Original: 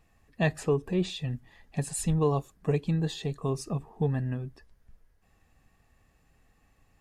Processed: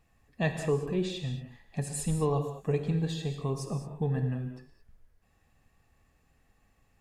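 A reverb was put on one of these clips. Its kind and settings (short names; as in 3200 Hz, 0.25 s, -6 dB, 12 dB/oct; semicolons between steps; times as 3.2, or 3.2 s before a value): non-linear reverb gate 0.24 s flat, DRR 5.5 dB; gain -3 dB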